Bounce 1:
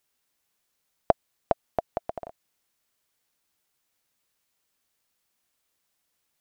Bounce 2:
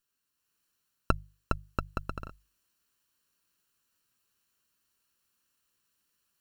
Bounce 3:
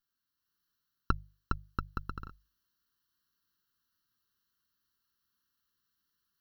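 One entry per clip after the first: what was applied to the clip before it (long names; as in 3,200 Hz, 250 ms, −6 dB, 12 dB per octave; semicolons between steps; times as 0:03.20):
lower of the sound and its delayed copy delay 0.7 ms; mains-hum notches 50/100/150 Hz; automatic gain control gain up to 6 dB; level −5 dB
phaser with its sweep stopped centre 2,400 Hz, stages 6; level −2 dB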